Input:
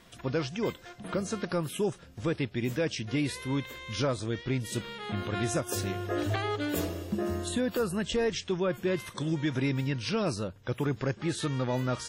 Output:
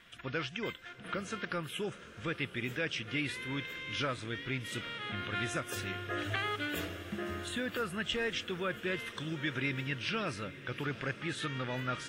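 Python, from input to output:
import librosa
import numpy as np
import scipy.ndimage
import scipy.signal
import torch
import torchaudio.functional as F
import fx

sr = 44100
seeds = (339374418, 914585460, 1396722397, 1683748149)

p1 = fx.band_shelf(x, sr, hz=2100.0, db=11.0, octaves=1.7)
p2 = p1 + fx.echo_diffused(p1, sr, ms=813, feedback_pct=63, wet_db=-15.0, dry=0)
y = F.gain(torch.from_numpy(p2), -8.5).numpy()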